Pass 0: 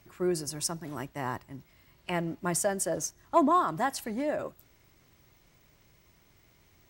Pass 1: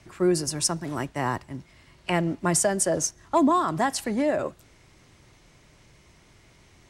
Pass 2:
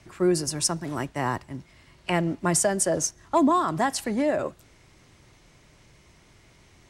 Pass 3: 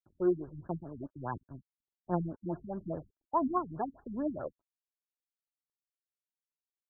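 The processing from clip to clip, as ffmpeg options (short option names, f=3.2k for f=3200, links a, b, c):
-filter_complex "[0:a]lowpass=f=11k:w=0.5412,lowpass=f=11k:w=1.3066,acrossover=split=320|3000[a][b][c];[b]acompressor=threshold=-29dB:ratio=3[d];[a][d][c]amix=inputs=3:normalize=0,volume=7.5dB"
-af anull
-af "aeval=exprs='sgn(val(0))*max(abs(val(0))-0.00596,0)':c=same,aphaser=in_gain=1:out_gain=1:delay=3.5:decay=0.45:speed=1.4:type=triangular,afftfilt=real='re*lt(b*sr/1024,270*pow(1800/270,0.5+0.5*sin(2*PI*4.8*pts/sr)))':imag='im*lt(b*sr/1024,270*pow(1800/270,0.5+0.5*sin(2*PI*4.8*pts/sr)))':win_size=1024:overlap=0.75,volume=-9dB"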